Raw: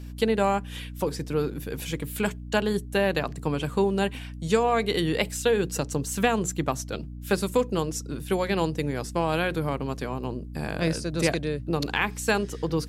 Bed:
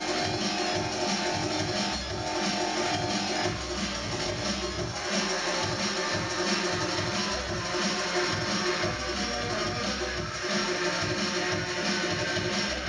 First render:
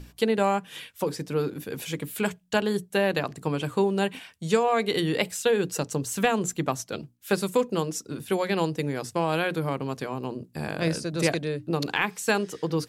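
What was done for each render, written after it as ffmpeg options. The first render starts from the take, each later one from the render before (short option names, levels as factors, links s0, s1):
-af "bandreject=f=60:t=h:w=6,bandreject=f=120:t=h:w=6,bandreject=f=180:t=h:w=6,bandreject=f=240:t=h:w=6,bandreject=f=300:t=h:w=6"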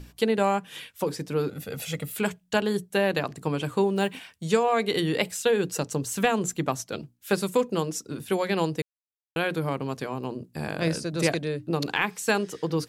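-filter_complex "[0:a]asettb=1/sr,asplit=3[s0][s1][s2];[s0]atrim=end=1.494[s3];[s1]atrim=start=1.49:end=2.16,asetpts=PTS-STARTPTS,afade=t=in:d=0.004:c=qsin,afade=t=out:st=0.666:d=0.004:c=qsin,aecho=1:1:1.5:0.66,atrim=end_sample=29547[s4];[s2]atrim=start=2.156[s5];[s3][s4]acrossfade=d=0.004:c1=hsin:c2=qsin[s6];[s6][s5]acrossfade=d=0.004:c1=qsin:c2=hsin,asettb=1/sr,asplit=3[s7][s8][s9];[s7]atrim=end=3.964[s10];[s8]atrim=start=3.96:end=4.44,asetpts=PTS-STARTPTS,afade=t=in:d=0.004:c=qsin,afade=t=out:st=0.476:d=0.004:c=qsin,acrusher=bits=8:mode=log:mix=0:aa=0.000001[s11];[s9]atrim=start=4.436[s12];[s10][s11]acrossfade=d=0.004:c1=hsin:c2=qsin[s13];[s13][s12]acrossfade=d=0.004:c1=qsin:c2=hsin,asplit=3[s14][s15][s16];[s14]atrim=end=8.82,asetpts=PTS-STARTPTS,afade=t=out:st=8.816:d=0.004:c=hsin[s17];[s15]atrim=start=8.82:end=9.36,asetpts=PTS-STARTPTS,volume=0[s18];[s16]atrim=start=9.36,asetpts=PTS-STARTPTS,afade=t=in:d=0.004:c=hsin[s19];[s17][s18][s19]concat=n=3:v=0:a=1"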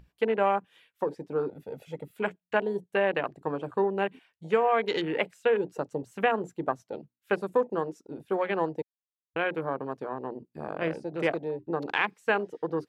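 -af "afwtdn=0.0224,bass=f=250:g=-13,treble=f=4000:g=-11"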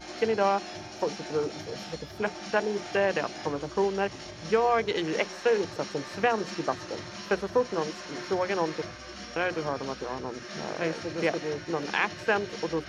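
-filter_complex "[1:a]volume=0.266[s0];[0:a][s0]amix=inputs=2:normalize=0"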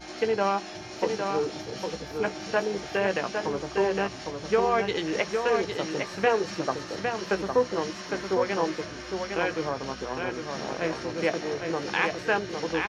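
-filter_complex "[0:a]asplit=2[s0][s1];[s1]adelay=16,volume=0.299[s2];[s0][s2]amix=inputs=2:normalize=0,aecho=1:1:808:0.562"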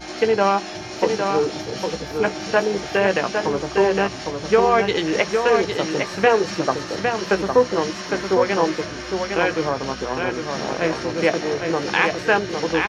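-af "volume=2.37,alimiter=limit=0.794:level=0:latency=1"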